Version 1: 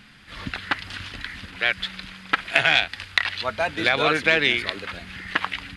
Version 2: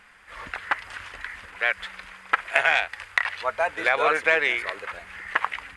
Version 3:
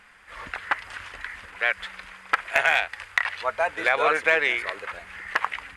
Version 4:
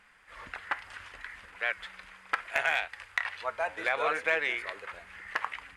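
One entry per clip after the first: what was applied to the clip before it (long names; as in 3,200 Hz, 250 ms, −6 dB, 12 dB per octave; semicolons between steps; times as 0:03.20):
octave-band graphic EQ 125/250/500/1,000/2,000/4,000/8,000 Hz −11/−9/+7/+8/+6/−9/+7 dB; level −6.5 dB
hard clipping −7.5 dBFS, distortion −24 dB
flanger 0.68 Hz, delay 5.7 ms, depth 4.8 ms, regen −84%; level −3 dB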